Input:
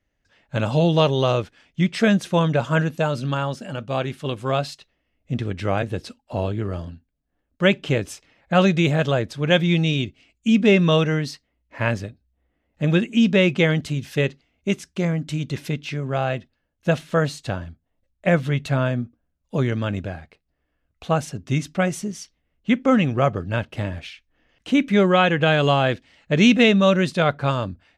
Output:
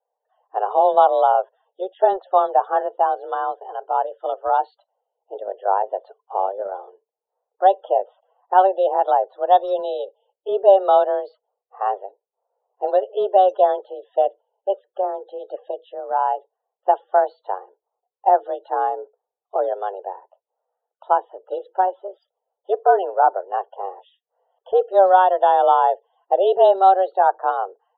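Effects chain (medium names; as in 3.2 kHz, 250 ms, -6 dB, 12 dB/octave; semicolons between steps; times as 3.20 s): mistuned SSB +190 Hz 320–3000 Hz; in parallel at -9 dB: small samples zeroed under -26.5 dBFS; on the sum: loudest bins only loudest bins 64; Butterworth band-stop 2.3 kHz, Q 0.54; trim +4.5 dB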